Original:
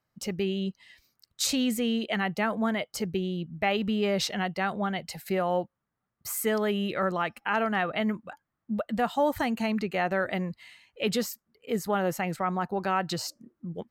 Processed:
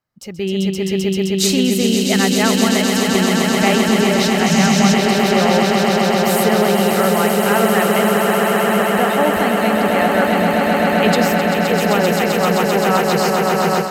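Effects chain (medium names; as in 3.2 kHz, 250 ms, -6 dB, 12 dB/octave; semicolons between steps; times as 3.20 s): on a send: echo with a slow build-up 130 ms, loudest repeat 8, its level -5.5 dB; on the sum: level rider gain up to 14.5 dB; 4.46–4.94 s: fifteen-band graphic EQ 160 Hz +9 dB, 400 Hz -7 dB, 6.3 kHz +9 dB; trim -1.5 dB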